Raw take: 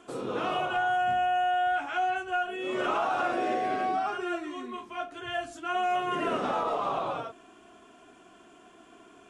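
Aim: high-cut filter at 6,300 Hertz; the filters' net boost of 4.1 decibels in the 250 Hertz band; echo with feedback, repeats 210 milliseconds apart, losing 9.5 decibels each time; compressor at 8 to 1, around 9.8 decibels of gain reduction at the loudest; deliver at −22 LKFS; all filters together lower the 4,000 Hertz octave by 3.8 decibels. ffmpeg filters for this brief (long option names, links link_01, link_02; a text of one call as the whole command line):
ffmpeg -i in.wav -af "lowpass=6300,equalizer=frequency=250:width_type=o:gain=6,equalizer=frequency=4000:width_type=o:gain=-6,acompressor=threshold=-34dB:ratio=8,aecho=1:1:210|420|630|840:0.335|0.111|0.0365|0.012,volume=15dB" out.wav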